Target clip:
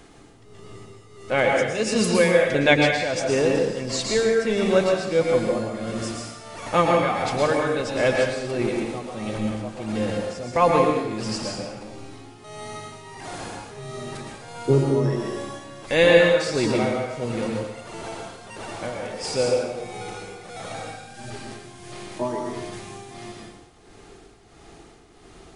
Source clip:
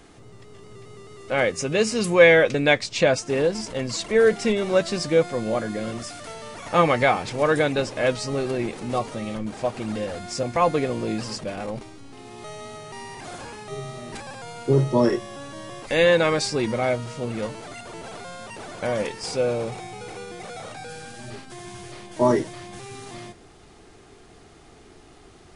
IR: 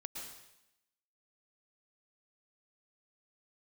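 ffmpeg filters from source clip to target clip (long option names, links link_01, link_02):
-filter_complex "[0:a]tremolo=f=1.5:d=0.79[link_01];[1:a]atrim=start_sample=2205[link_02];[link_01][link_02]afir=irnorm=-1:irlink=0,volume=6.5dB"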